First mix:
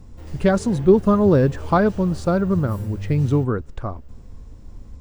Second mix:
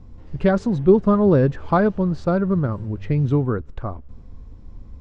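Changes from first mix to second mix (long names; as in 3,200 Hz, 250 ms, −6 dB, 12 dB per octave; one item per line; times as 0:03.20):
background −7.5 dB
master: add high-frequency loss of the air 150 metres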